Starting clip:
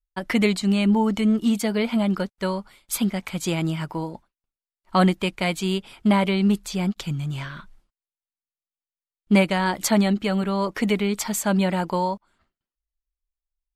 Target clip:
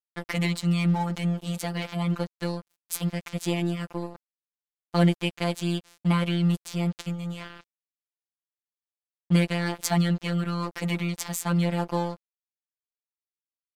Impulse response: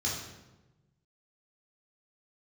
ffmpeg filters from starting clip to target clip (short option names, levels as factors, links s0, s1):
-af "afftfilt=real='hypot(re,im)*cos(PI*b)':imag='0':win_size=1024:overlap=0.75,aeval=exprs='sgn(val(0))*max(abs(val(0))-0.0112,0)':c=same"